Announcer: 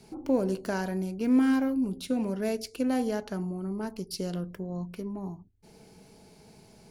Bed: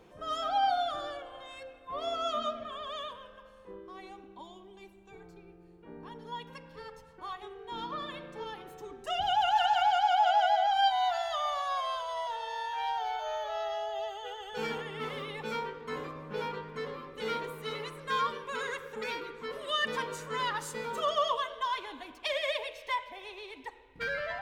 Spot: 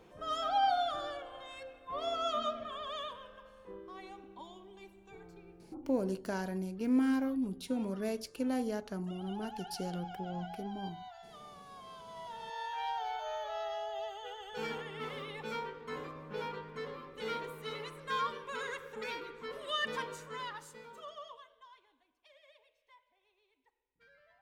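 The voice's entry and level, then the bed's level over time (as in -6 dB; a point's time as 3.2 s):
5.60 s, -6.0 dB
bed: 5.63 s -1.5 dB
5.85 s -20.5 dB
11.7 s -20.5 dB
12.62 s -4 dB
20.01 s -4 dB
22.08 s -30.5 dB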